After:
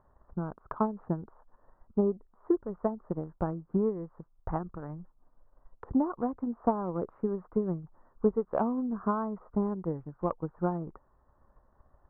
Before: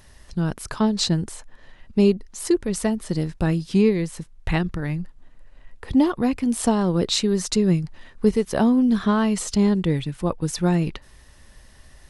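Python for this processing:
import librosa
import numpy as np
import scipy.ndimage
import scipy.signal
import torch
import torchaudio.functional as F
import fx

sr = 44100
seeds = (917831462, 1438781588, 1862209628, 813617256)

y = scipy.signal.sosfilt(scipy.signal.butter(8, 1300.0, 'lowpass', fs=sr, output='sos'), x)
y = fx.low_shelf(y, sr, hz=400.0, db=-12.0)
y = fx.transient(y, sr, attack_db=7, sustain_db=-1)
y = F.gain(torch.from_numpy(y), -5.5).numpy()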